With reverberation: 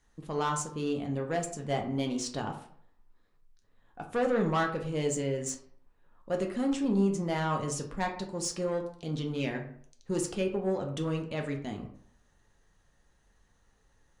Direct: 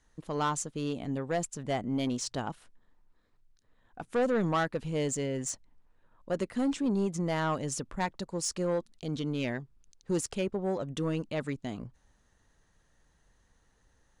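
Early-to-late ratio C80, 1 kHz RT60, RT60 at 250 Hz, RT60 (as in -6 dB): 12.0 dB, 0.55 s, 0.50 s, 0.60 s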